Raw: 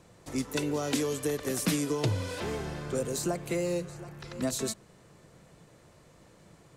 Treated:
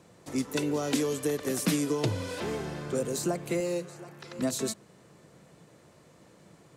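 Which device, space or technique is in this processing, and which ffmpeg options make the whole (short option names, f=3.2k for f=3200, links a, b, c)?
filter by subtraction: -filter_complex "[0:a]asplit=2[a][b];[b]lowpass=210,volume=-1[c];[a][c]amix=inputs=2:normalize=0,asettb=1/sr,asplit=3[d][e][f];[d]atrim=end=3.604[g];[e]atrim=start=3.6:end=4.39,asetpts=PTS-STARTPTS,afade=t=in:d=0.004:c=qsin,afade=t=out:st=0.786:d=0.004:c=qsin,highpass=f=250:p=1[h];[f]atrim=start=4.386[i];[g][h]acrossfade=d=0.004:c1=hsin:c2=qsin[j];[j][i]acrossfade=d=0.004:c1=qsin:c2=hsin"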